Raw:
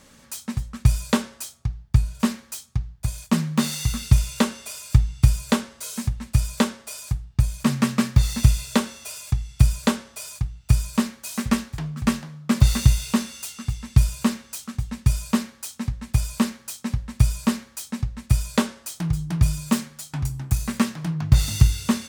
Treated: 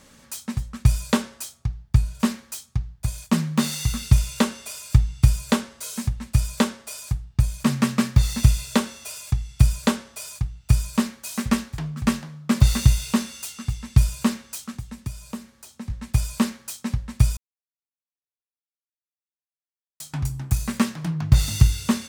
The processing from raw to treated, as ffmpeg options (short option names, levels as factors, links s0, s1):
-filter_complex "[0:a]asettb=1/sr,asplit=3[s0][s1][s2];[s0]atrim=end=14.734[s3];[s1]atrim=start=14.73:end=15.9,asetpts=PTS-STARTPTS,afade=t=in:d=0.004:c=qsin,afade=t=out:st=1.166:d=0.004:c=qsin,acrossover=split=110|880|6800[s4][s5][s6][s7];[s4]acompressor=threshold=0.0141:ratio=3[s8];[s5]acompressor=threshold=0.0158:ratio=3[s9];[s6]acompressor=threshold=0.00282:ratio=3[s10];[s7]acompressor=threshold=0.00282:ratio=3[s11];[s8][s9][s10][s11]amix=inputs=4:normalize=0[s12];[s2]atrim=start=15.896[s13];[s3][s12]acrossfade=d=0.004:c1=hsin:c2=qsin[s14];[s14][s13]acrossfade=d=0.004:c1=qsin:c2=hsin,asplit=3[s15][s16][s17];[s15]atrim=end=17.37,asetpts=PTS-STARTPTS,afade=t=out:st=17.366:d=0.004:c=hsin[s18];[s16]atrim=start=17.37:end=20,asetpts=PTS-STARTPTS,volume=0[s19];[s17]atrim=start=20,asetpts=PTS-STARTPTS,afade=t=in:d=0.004:c=hsin[s20];[s18][s19][s20]concat=n=3:v=0:a=1"